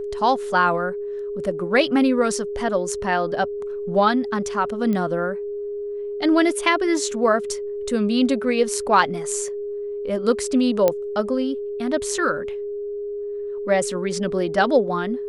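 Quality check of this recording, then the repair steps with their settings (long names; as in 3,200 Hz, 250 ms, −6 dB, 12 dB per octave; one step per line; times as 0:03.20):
whistle 410 Hz −26 dBFS
0:04.93: click −15 dBFS
0:10.88: click −6 dBFS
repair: click removal
notch filter 410 Hz, Q 30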